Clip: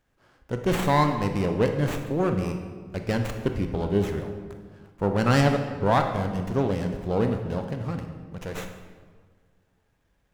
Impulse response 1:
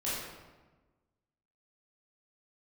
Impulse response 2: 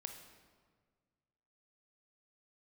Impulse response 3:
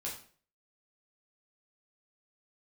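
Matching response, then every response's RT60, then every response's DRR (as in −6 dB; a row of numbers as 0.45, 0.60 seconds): 2; 1.3, 1.6, 0.45 seconds; −10.0, 5.0, −4.5 decibels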